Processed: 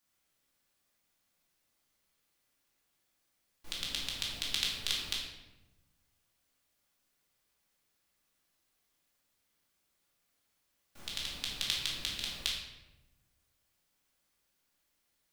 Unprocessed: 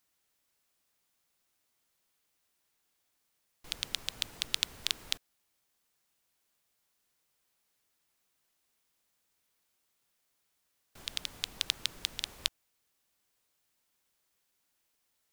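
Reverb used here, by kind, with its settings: shoebox room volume 440 m³, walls mixed, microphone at 2.4 m; gain -5.5 dB

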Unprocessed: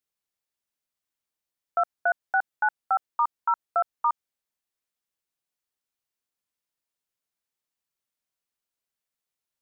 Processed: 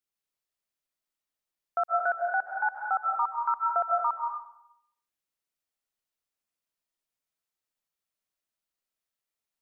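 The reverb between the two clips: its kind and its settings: digital reverb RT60 0.77 s, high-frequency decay 0.65×, pre-delay 0.11 s, DRR 0.5 dB; gain -4 dB

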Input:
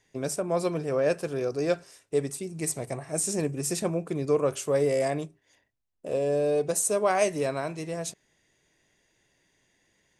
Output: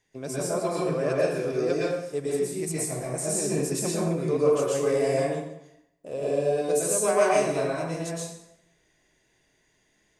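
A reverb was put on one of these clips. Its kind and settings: plate-style reverb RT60 0.82 s, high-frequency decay 0.75×, pre-delay 0.105 s, DRR -6 dB; gain -5 dB

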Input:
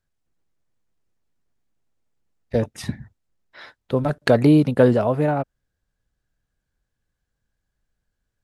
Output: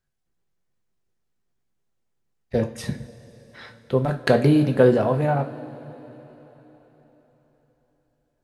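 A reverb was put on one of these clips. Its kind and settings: two-slope reverb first 0.36 s, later 4.3 s, from -19 dB, DRR 4.5 dB; gain -2 dB

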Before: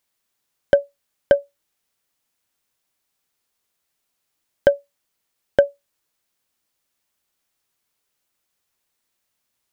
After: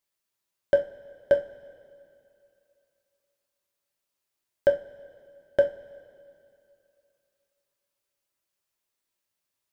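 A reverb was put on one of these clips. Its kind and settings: two-slope reverb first 0.29 s, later 2.7 s, from -21 dB, DRR 2 dB; gain -9.5 dB

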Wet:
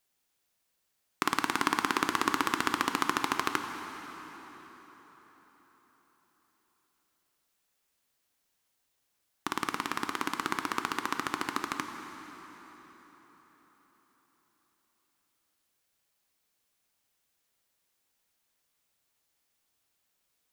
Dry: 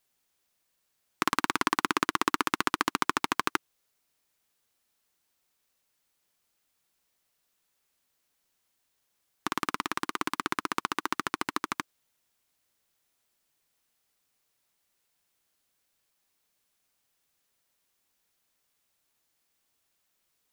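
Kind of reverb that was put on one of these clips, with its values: plate-style reverb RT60 4.8 s, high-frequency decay 0.75×, DRR 6 dB; gain -2 dB

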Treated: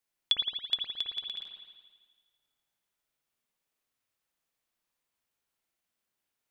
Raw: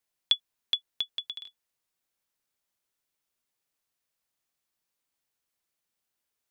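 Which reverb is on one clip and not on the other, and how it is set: spring tank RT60 1.5 s, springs 55 ms, chirp 75 ms, DRR -1 dB; gain -2.5 dB

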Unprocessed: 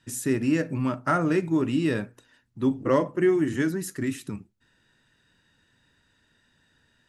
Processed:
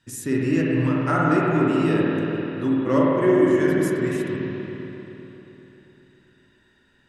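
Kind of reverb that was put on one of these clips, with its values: spring tank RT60 3.6 s, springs 49/56 ms, chirp 70 ms, DRR -5 dB; gain -1.5 dB

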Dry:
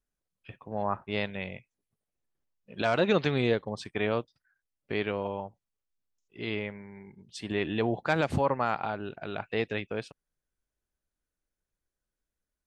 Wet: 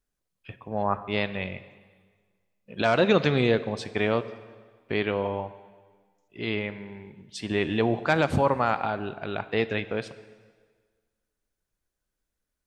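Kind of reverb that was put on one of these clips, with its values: plate-style reverb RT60 1.6 s, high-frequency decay 0.9×, DRR 13 dB; gain +4 dB

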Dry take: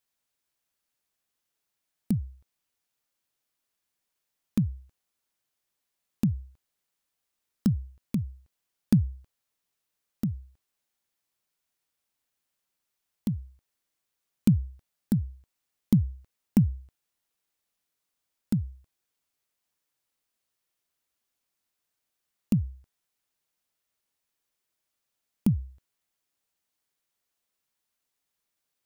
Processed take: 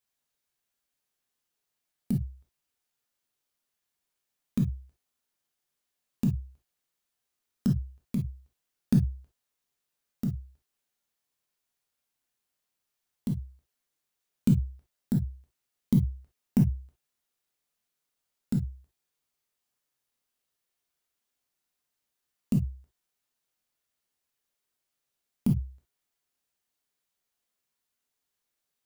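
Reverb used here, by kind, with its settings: non-linear reverb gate 80 ms flat, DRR 1.5 dB; gain -3.5 dB

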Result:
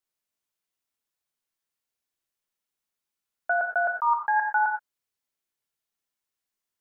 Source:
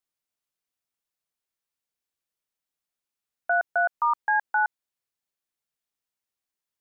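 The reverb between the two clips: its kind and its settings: non-linear reverb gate 0.14 s flat, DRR 1.5 dB; gain -1 dB

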